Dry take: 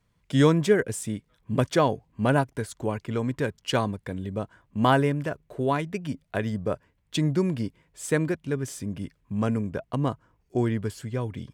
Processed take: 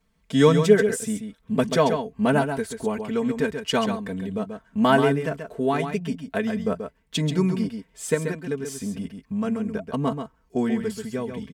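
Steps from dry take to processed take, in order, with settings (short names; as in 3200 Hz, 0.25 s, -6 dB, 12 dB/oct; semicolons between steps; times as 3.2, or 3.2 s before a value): comb 4.5 ms, depth 85%; 8.14–9.86 compressor 2:1, threshold -26 dBFS, peak gain reduction 5.5 dB; echo 0.134 s -7.5 dB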